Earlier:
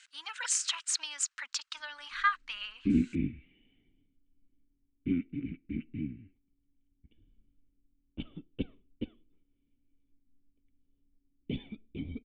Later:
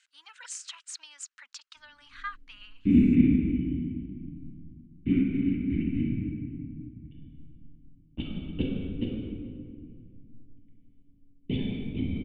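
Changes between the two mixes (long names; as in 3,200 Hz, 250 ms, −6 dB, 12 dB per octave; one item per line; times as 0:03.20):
speech −9.5 dB
reverb: on, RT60 2.0 s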